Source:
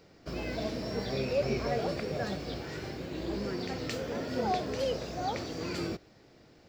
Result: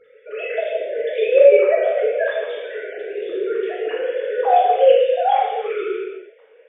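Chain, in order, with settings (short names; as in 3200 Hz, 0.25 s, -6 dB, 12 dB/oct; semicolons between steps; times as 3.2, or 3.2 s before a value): sine-wave speech; non-linear reverb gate 0.4 s falling, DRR -5.5 dB; maximiser +11.5 dB; gain -1 dB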